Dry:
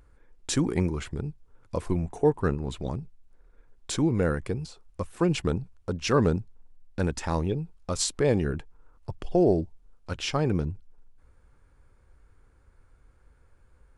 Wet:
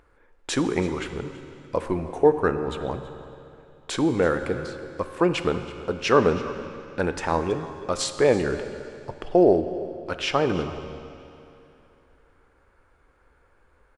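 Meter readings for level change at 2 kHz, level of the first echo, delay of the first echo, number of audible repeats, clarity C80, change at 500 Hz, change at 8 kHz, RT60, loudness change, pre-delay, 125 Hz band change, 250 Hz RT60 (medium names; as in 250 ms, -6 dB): +7.0 dB, -18.5 dB, 327 ms, 1, 10.0 dB, +6.0 dB, -1.5 dB, 2.9 s, +3.5 dB, 13 ms, -4.0 dB, 2.9 s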